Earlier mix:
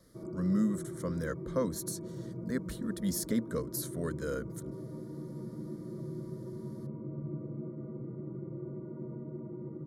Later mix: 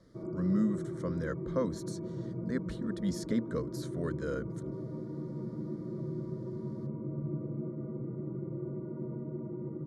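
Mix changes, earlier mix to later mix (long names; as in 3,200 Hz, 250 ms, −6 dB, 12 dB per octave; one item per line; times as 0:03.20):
background +3.0 dB
master: add high-frequency loss of the air 97 metres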